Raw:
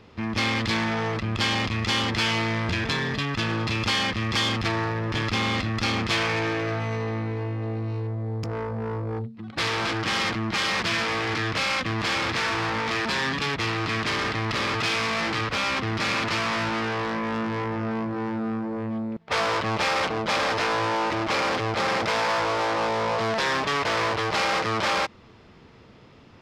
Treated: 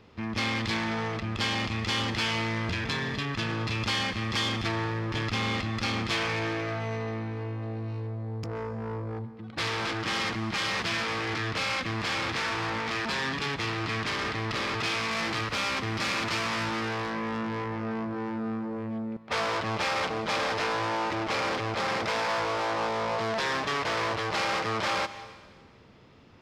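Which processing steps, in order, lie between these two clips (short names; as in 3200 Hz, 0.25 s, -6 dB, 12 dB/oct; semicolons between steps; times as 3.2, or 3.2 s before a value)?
15.11–17.09 high shelf 6700 Hz +7 dB; plate-style reverb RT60 1.5 s, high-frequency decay 1×, pre-delay 0.115 s, DRR 13.5 dB; gain -4.5 dB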